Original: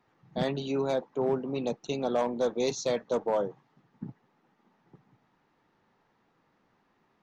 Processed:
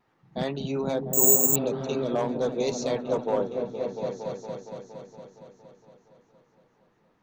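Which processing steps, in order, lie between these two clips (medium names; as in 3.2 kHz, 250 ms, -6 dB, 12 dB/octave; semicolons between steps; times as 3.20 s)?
vibrato 0.83 Hz 16 cents; on a send: delay with an opening low-pass 232 ms, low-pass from 200 Hz, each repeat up 1 oct, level 0 dB; 1.30–2.06 s: on the sum: spectral replace 680–2200 Hz both; 1.13–1.56 s: careless resampling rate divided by 6×, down none, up zero stuff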